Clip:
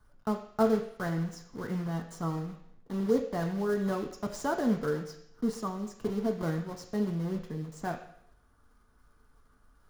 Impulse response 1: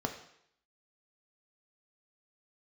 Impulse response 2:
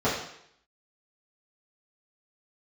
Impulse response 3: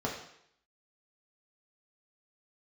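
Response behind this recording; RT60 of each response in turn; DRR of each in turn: 1; 0.70, 0.70, 0.70 s; 4.0, -11.0, -3.0 dB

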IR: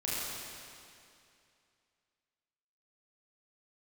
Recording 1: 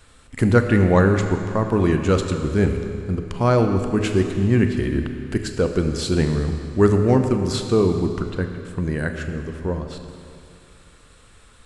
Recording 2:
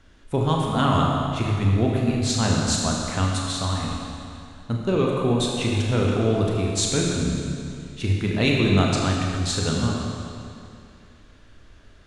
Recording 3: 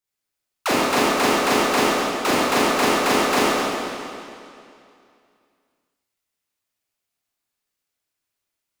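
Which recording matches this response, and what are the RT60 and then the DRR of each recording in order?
3; 2.5, 2.5, 2.5 s; 5.5, -2.0, -8.5 dB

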